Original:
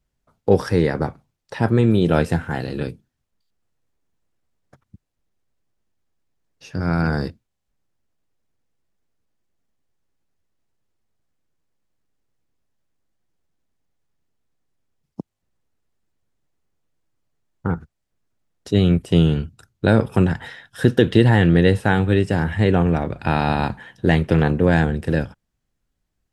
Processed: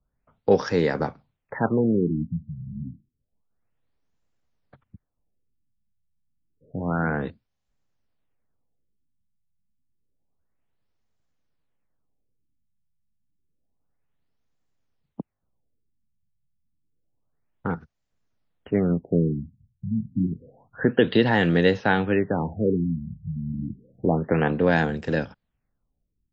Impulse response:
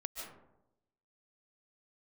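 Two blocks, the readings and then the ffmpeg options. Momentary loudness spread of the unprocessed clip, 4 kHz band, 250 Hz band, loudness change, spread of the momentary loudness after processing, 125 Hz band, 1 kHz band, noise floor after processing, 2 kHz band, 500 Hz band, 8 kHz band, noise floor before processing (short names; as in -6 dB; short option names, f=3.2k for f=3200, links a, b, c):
14 LU, -5.0 dB, -5.0 dB, -5.0 dB, 17 LU, -9.0 dB, -4.0 dB, -78 dBFS, -3.0 dB, -3.5 dB, n/a, -77 dBFS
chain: -filter_complex "[0:a]equalizer=f=350:w=5.5:g=-5,acrossover=split=180[a][b];[a]acompressor=threshold=-36dB:ratio=6[c];[c][b]amix=inputs=2:normalize=0,afftfilt=real='re*lt(b*sr/1024,210*pow(7800/210,0.5+0.5*sin(2*PI*0.29*pts/sr)))':imag='im*lt(b*sr/1024,210*pow(7800/210,0.5+0.5*sin(2*PI*0.29*pts/sr)))':win_size=1024:overlap=0.75,volume=-1dB"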